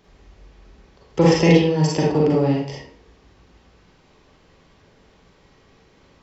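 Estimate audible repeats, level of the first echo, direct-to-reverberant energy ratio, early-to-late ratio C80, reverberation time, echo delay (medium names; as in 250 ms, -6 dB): no echo, no echo, -4.5 dB, 5.0 dB, 0.55 s, no echo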